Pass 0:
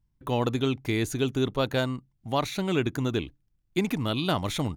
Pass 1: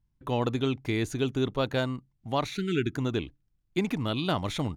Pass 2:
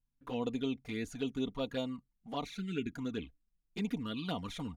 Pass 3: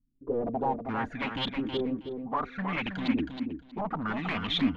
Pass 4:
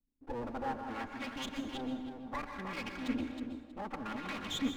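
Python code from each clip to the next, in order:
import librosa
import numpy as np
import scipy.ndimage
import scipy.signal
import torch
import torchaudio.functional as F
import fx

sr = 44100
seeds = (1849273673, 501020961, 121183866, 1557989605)

y1 = fx.spec_erase(x, sr, start_s=2.56, length_s=0.39, low_hz=440.0, high_hz=1300.0)
y1 = fx.high_shelf(y1, sr, hz=10000.0, db=-12.0)
y1 = F.gain(torch.from_numpy(y1), -1.5).numpy()
y2 = y1 + 0.59 * np.pad(y1, (int(4.2 * sr / 1000.0), 0))[:len(y1)]
y2 = fx.env_flanger(y2, sr, rest_ms=8.1, full_db=-22.0)
y2 = F.gain(torch.from_numpy(y2), -8.0).numpy()
y3 = 10.0 ** (-35.5 / 20.0) * (np.abs((y2 / 10.0 ** (-35.5 / 20.0) + 3.0) % 4.0 - 2.0) - 1.0)
y3 = fx.filter_lfo_lowpass(y3, sr, shape='saw_up', hz=0.65, low_hz=250.0, high_hz=3900.0, q=5.5)
y3 = fx.echo_feedback(y3, sr, ms=319, feedback_pct=18, wet_db=-6.5)
y3 = F.gain(torch.from_numpy(y3), 6.0).numpy()
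y4 = fx.lower_of_two(y3, sr, delay_ms=3.6)
y4 = fx.rev_plate(y4, sr, seeds[0], rt60_s=0.84, hf_ratio=0.75, predelay_ms=115, drr_db=7.0)
y4 = F.gain(torch.from_numpy(y4), -7.5).numpy()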